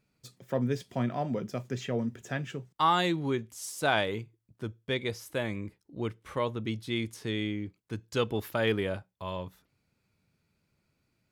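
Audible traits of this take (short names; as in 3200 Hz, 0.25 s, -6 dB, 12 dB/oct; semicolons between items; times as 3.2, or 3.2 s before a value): noise floor -78 dBFS; spectral tilt -4.0 dB/oct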